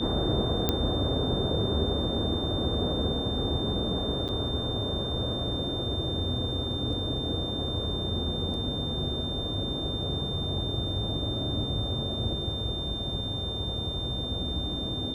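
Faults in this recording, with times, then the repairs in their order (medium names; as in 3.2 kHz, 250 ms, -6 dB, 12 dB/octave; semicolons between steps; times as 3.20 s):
whine 3.6 kHz -33 dBFS
0.69 s: pop -10 dBFS
4.28–4.29 s: dropout 8 ms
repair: de-click; band-stop 3.6 kHz, Q 30; interpolate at 4.28 s, 8 ms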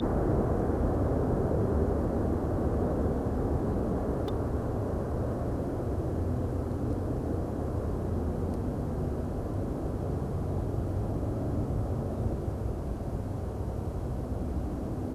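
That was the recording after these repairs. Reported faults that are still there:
nothing left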